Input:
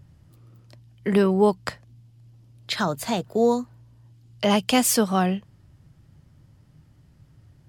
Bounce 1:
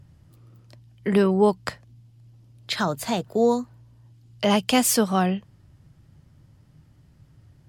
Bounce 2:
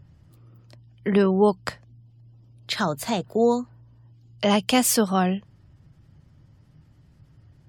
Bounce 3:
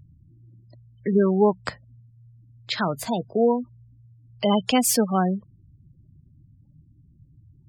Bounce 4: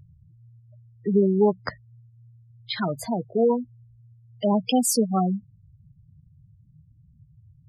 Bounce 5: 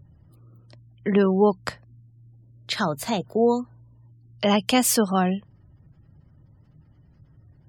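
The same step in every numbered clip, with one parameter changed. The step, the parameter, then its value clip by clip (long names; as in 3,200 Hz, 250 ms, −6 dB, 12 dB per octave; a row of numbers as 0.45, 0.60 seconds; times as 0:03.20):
gate on every frequency bin, under each frame's peak: −60, −45, −20, −10, −35 decibels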